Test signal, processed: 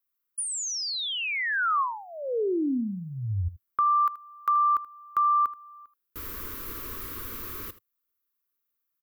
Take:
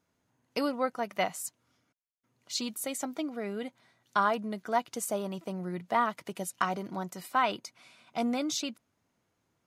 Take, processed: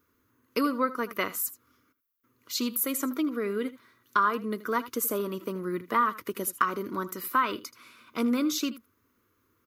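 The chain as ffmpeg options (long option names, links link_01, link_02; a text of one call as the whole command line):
ffmpeg -i in.wav -filter_complex "[0:a]firequalizer=gain_entry='entry(100,0);entry(150,-13);entry(250,1);entry(450,1);entry(740,-21);entry(1100,5);entry(1800,-2);entry(2900,-5);entry(8900,-6);entry(13000,11)':delay=0.05:min_phase=1,acompressor=threshold=-31dB:ratio=2,asplit=2[link_01][link_02];[link_02]aecho=0:1:79:0.15[link_03];[link_01][link_03]amix=inputs=2:normalize=0,volume=7dB" out.wav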